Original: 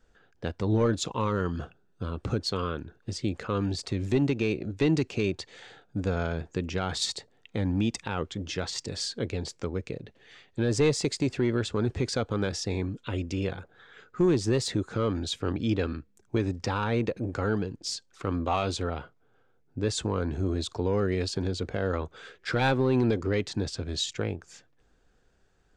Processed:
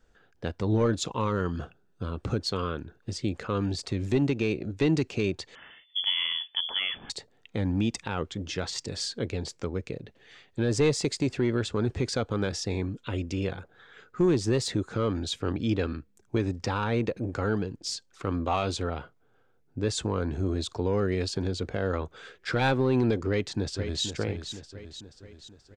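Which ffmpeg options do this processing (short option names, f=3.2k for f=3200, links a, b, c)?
-filter_complex "[0:a]asettb=1/sr,asplit=3[a][b][c];[a]atrim=end=5.554[d];[b]atrim=start=5.55:end=7.1,asetpts=PTS-STARTPTS,afade=t=in:d=0.004:c=qsin,afade=t=out:st=1.546:d=0.004:c=qsin,lowpass=f=3k:t=q:w=0.5098,lowpass=f=3k:t=q:w=0.6013,lowpass=f=3k:t=q:w=0.9,lowpass=f=3k:t=q:w=2.563,afreqshift=-3500[e];[c]atrim=start=7.096[f];[d][e]acrossfade=d=0.004:c1=hsin:c2=qsin[g];[g][f]acrossfade=d=0.004:c1=qsin:c2=hsin,asplit=2[h][i];[i]afade=t=in:st=23.28:d=0.01,afade=t=out:st=24.04:d=0.01,aecho=0:1:480|960|1440|1920|2400|2880|3360:0.375837|0.206711|0.113691|0.0625299|0.0343915|0.0189153|0.0104034[j];[h][j]amix=inputs=2:normalize=0"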